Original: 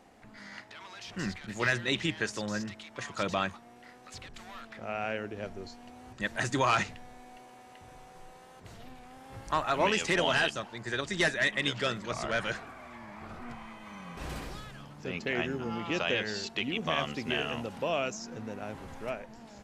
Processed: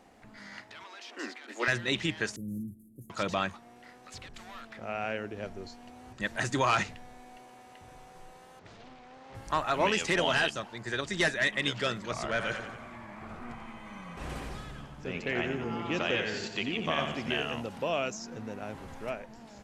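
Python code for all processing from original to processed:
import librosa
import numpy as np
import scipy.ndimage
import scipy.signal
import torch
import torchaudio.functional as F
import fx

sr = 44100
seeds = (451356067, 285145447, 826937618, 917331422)

y = fx.chain(x, sr, fx.steep_highpass(hz=240.0, slope=96),
    fx.high_shelf(hz=5000.0, db=-5.5), at=(0.84, 1.68))
y = fx.chain(y, sr, fx.cvsd(bps=64000),
    fx.cheby2_bandstop(low_hz=1200.0, high_hz=3500.0, order=4, stop_db=80), at=(2.36, 3.1))
y = fx.chain(y, sr, fx.lowpass(hz=6000.0, slope=24),
    fx.low_shelf(hz=130.0, db=-9.0),
    fx.doppler_dist(depth_ms=0.6), at=(8.59, 9.35))
y = fx.chain(y, sr, fx.lowpass(hz=11000.0, slope=12),
    fx.peak_eq(hz=4800.0, db=-4.0, octaves=1.0),
    fx.echo_split(split_hz=320.0, low_ms=236, high_ms=89, feedback_pct=52, wet_db=-8), at=(12.3, 17.3))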